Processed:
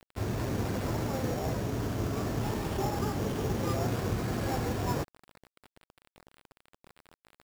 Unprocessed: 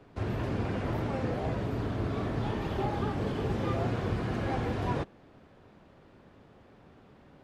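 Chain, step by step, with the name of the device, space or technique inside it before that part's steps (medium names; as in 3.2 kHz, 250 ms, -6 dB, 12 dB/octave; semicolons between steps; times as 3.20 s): early 8-bit sampler (sample-rate reducer 6.2 kHz, jitter 0%; bit crusher 8-bit)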